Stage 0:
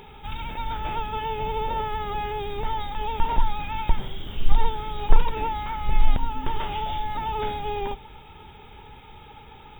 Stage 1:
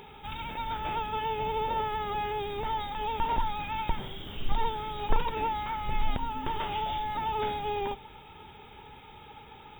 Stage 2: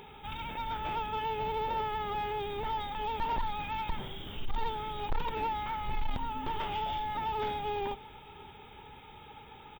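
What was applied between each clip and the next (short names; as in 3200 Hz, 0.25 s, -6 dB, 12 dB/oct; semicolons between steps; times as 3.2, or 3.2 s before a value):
low shelf 70 Hz -11 dB; gain -2 dB
soft clip -23 dBFS, distortion -13 dB; echo 0.581 s -24 dB; gain -1.5 dB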